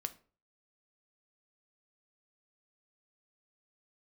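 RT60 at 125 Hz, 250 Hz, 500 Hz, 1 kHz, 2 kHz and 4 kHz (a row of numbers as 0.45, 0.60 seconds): 0.50, 0.40, 0.45, 0.40, 0.35, 0.25 seconds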